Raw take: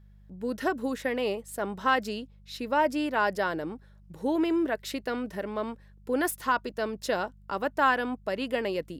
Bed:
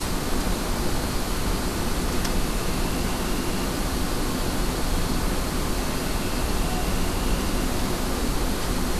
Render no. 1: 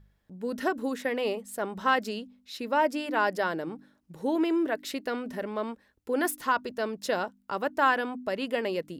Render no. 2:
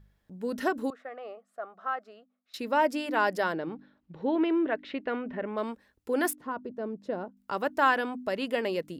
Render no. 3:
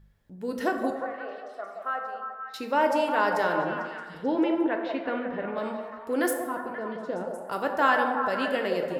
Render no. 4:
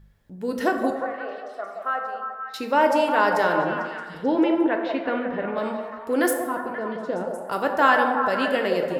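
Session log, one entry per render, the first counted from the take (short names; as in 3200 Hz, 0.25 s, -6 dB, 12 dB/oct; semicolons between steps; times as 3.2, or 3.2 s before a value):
de-hum 50 Hz, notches 6
0.9–2.54 double band-pass 930 Hz, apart 0.77 oct; 3.52–5.56 LPF 4500 Hz -> 2600 Hz 24 dB/oct; 6.33–7.37 band-pass 220 Hz, Q 0.66
delay with a stepping band-pass 0.177 s, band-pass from 650 Hz, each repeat 0.7 oct, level -3 dB; plate-style reverb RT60 1.3 s, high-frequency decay 0.5×, DRR 4 dB
gain +4.5 dB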